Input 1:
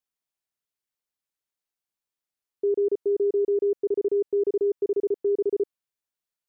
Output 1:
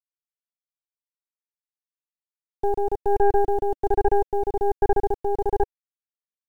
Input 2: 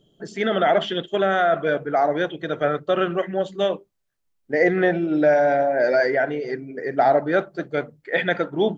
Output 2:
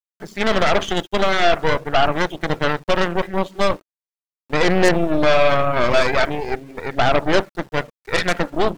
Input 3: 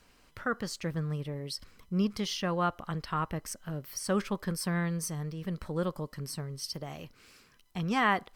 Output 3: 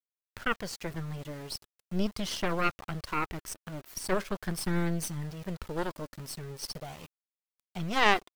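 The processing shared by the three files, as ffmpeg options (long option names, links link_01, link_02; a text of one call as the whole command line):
ffmpeg -i in.wav -af "aeval=exprs='val(0)*gte(abs(val(0)),0.00708)':channel_layout=same,aphaser=in_gain=1:out_gain=1:delay=3.6:decay=0.29:speed=0.41:type=triangular,aeval=exprs='0.531*(cos(1*acos(clip(val(0)/0.531,-1,1)))-cos(1*PI/2))+0.0531*(cos(3*acos(clip(val(0)/0.531,-1,1)))-cos(3*PI/2))+0.0119*(cos(5*acos(clip(val(0)/0.531,-1,1)))-cos(5*PI/2))+0.00473*(cos(7*acos(clip(val(0)/0.531,-1,1)))-cos(7*PI/2))+0.106*(cos(8*acos(clip(val(0)/0.531,-1,1)))-cos(8*PI/2))':channel_layout=same,volume=1.5dB" out.wav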